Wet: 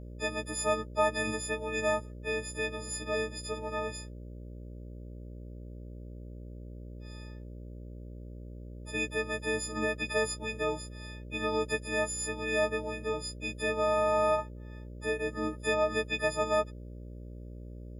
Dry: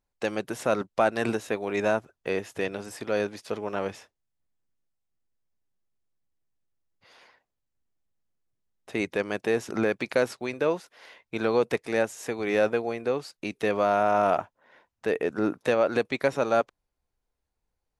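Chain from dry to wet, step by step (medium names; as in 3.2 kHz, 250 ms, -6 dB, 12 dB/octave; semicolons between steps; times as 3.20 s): partials quantised in pitch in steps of 6 st; mains buzz 60 Hz, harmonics 10, -36 dBFS -6 dB/octave; trim -8 dB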